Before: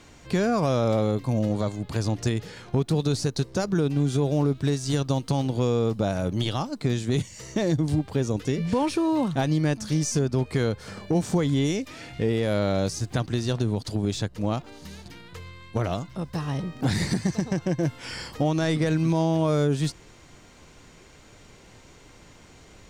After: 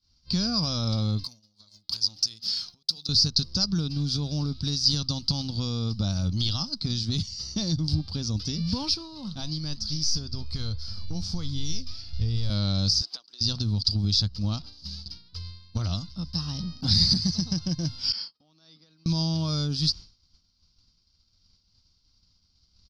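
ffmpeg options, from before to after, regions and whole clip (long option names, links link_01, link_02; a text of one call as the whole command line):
ffmpeg -i in.wav -filter_complex "[0:a]asettb=1/sr,asplit=3[link_01][link_02][link_03];[link_01]atrim=end=1.244[link_04];[link_02]atrim=start=1.24:end=3.09,asetpts=PTS-STARTPTS,afade=type=in:duration=0.004:curve=qsin,afade=type=out:start_time=1.846:duration=0.004:curve=qsin,bandreject=frequency=77.24:width_type=h:width=4,bandreject=frequency=154.48:width_type=h:width=4,bandreject=frequency=231.72:width_type=h:width=4,bandreject=frequency=308.96:width_type=h:width=4,bandreject=frequency=386.2:width_type=h:width=4,bandreject=frequency=463.44:width_type=h:width=4,bandreject=frequency=540.68:width_type=h:width=4,bandreject=frequency=617.92:width_type=h:width=4,bandreject=frequency=695.16:width_type=h:width=4,bandreject=frequency=772.4:width_type=h:width=4,acompressor=threshold=-34dB:ratio=16:attack=3.2:release=140:knee=1:detection=peak,aemphasis=mode=production:type=riaa[link_05];[link_03]atrim=start=3.086[link_06];[link_04][link_05]acrossfade=duration=0.004:curve1=hsin:curve2=qsin[link_07];[link_07][link_06]acrossfade=duration=0.004:curve1=qsin:curve2=hsin,asettb=1/sr,asplit=3[link_08][link_09][link_10];[link_08]atrim=end=8.944[link_11];[link_09]atrim=start=8.94:end=12.5,asetpts=PTS-STARTPTS,afade=type=in:duration=0.004:curve=qsin,afade=type=out:start_time=3.556:duration=0.004:curve=qsin,asubboost=boost=11:cutoff=69,flanger=delay=6:depth=4.9:regen=84:speed=1.1:shape=triangular[link_12];[link_10]atrim=start=12.496[link_13];[link_11][link_12]acrossfade=duration=0.004:curve1=hsin:curve2=qsin[link_14];[link_14][link_13]acrossfade=duration=0.004:curve1=qsin:curve2=hsin,asettb=1/sr,asplit=3[link_15][link_16][link_17];[link_15]atrim=end=13.014[link_18];[link_16]atrim=start=13.01:end=13.41,asetpts=PTS-STARTPTS,afade=type=in:duration=0.004:curve=qsin,afade=type=out:start_time=0.396:duration=0.004:curve=qsin,highpass=frequency=410:width=0.5412,highpass=frequency=410:width=1.3066,acompressor=threshold=-35dB:ratio=10:attack=3.2:release=140:knee=1:detection=peak[link_19];[link_17]atrim=start=13.406[link_20];[link_18][link_19]acrossfade=duration=0.004:curve1=hsin:curve2=qsin[link_21];[link_21][link_20]acrossfade=duration=0.004:curve1=qsin:curve2=hsin,asettb=1/sr,asplit=3[link_22][link_23][link_24];[link_22]atrim=end=18.124[link_25];[link_23]atrim=start=18.12:end=19.06,asetpts=PTS-STARTPTS,afade=type=in:duration=0.004:curve=qsin,afade=type=out:start_time=0.936:duration=0.004:curve=qsin,agate=range=-33dB:threshold=-33dB:ratio=3:release=100:detection=peak,acompressor=threshold=-28dB:ratio=16:attack=3.2:release=140:knee=1:detection=peak,highpass=340,lowpass=3700[link_26];[link_24]atrim=start=19.056[link_27];[link_25][link_26]acrossfade=duration=0.004:curve1=hsin:curve2=qsin[link_28];[link_28][link_27]acrossfade=duration=0.004:curve1=qsin:curve2=hsin,firequalizer=gain_entry='entry(120,0);entry(390,-25);entry(1300,-14);entry(1800,-24);entry(4900,13);entry(7200,-21)':delay=0.05:min_phase=1,agate=range=-33dB:threshold=-39dB:ratio=3:detection=peak,equalizer=frequency=130:width_type=o:width=0.4:gain=-14,volume=7.5dB" out.wav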